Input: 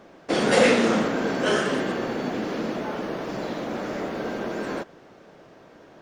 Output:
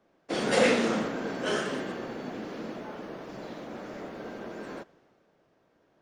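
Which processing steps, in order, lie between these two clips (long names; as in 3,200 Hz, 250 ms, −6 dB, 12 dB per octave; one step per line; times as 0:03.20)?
multiband upward and downward expander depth 40%
level −8 dB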